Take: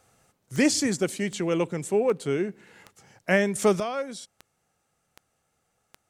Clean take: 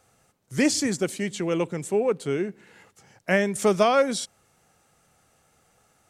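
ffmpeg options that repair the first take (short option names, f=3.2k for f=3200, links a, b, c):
-af "adeclick=t=4,asetnsamples=n=441:p=0,asendcmd='3.8 volume volume 10.5dB',volume=0dB"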